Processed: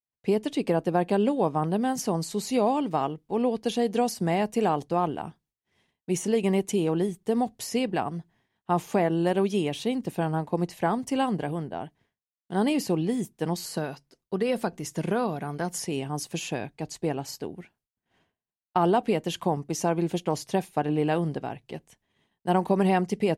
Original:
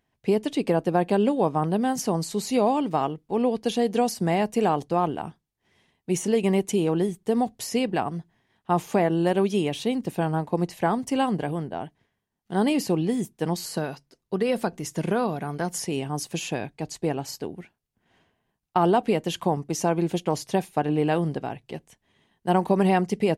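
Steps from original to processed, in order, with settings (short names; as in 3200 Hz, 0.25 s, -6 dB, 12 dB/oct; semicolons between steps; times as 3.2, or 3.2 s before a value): expander -60 dBFS; gain -2 dB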